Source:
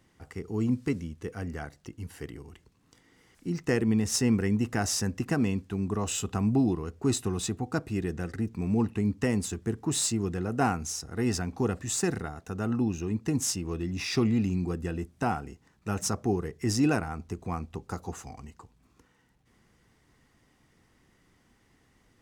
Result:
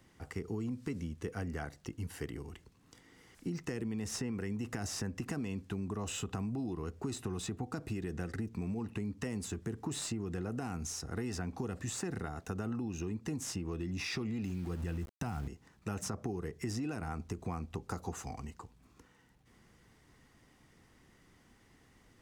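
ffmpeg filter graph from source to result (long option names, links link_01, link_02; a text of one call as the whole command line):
ffmpeg -i in.wav -filter_complex "[0:a]asettb=1/sr,asplit=3[link_01][link_02][link_03];[link_01]atrim=end=14.444[link_04];[link_02]atrim=start=14.44:end=15.48,asetpts=PTS-STARTPTS,afade=type=in:duration=0.004:curve=qsin,afade=type=out:start_time=1.036:duration=0.004:curve=qsin,asubboost=boost=10.5:cutoff=200,aeval=exprs='val(0)*gte(abs(val(0)),0.00794)':channel_layout=same[link_05];[link_03]atrim=start=15.476[link_06];[link_04][link_05]acrossfade=duration=0.004:curve1=hsin:curve2=qsin[link_07];[link_07][link_06]acrossfade=duration=0.004:curve1=qsin:curve2=hsin,acrossover=split=370|2900[link_08][link_09][link_10];[link_08]acompressor=threshold=-27dB:ratio=4[link_11];[link_09]acompressor=threshold=-33dB:ratio=4[link_12];[link_10]acompressor=threshold=-40dB:ratio=4[link_13];[link_11][link_12][link_13]amix=inputs=3:normalize=0,alimiter=limit=-23.5dB:level=0:latency=1,acompressor=threshold=-35dB:ratio=6,volume=1dB" out.wav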